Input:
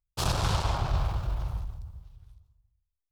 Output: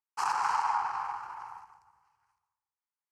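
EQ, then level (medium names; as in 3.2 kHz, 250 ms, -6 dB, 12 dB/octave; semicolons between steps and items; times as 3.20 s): resonant high-pass 850 Hz, resonance Q 5.5; low-pass 6.6 kHz 12 dB/octave; static phaser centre 1.5 kHz, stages 4; 0.0 dB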